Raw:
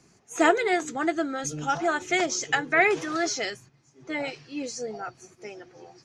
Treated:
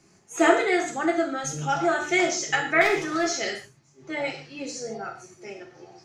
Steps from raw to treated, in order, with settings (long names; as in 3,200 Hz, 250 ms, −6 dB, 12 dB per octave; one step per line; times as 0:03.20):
0:02.81–0:03.35: gain into a clipping stage and back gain 19.5 dB
reverb whose tail is shaped and stops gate 180 ms falling, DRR 0 dB
level −1.5 dB